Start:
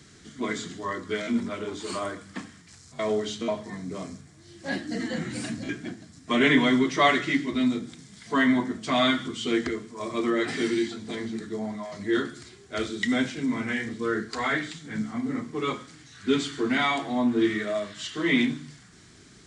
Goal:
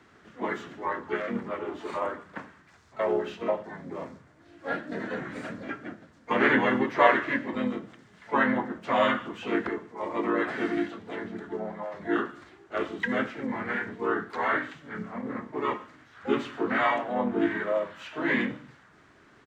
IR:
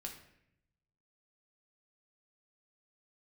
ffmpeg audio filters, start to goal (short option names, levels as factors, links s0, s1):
-filter_complex "[0:a]asplit=4[s0][s1][s2][s3];[s1]asetrate=22050,aresample=44100,atempo=2,volume=0.178[s4];[s2]asetrate=37084,aresample=44100,atempo=1.18921,volume=0.891[s5];[s3]asetrate=88200,aresample=44100,atempo=0.5,volume=0.178[s6];[s0][s4][s5][s6]amix=inputs=4:normalize=0,acrossover=split=350 2200:gain=0.224 1 0.0891[s7][s8][s9];[s7][s8][s9]amix=inputs=3:normalize=0"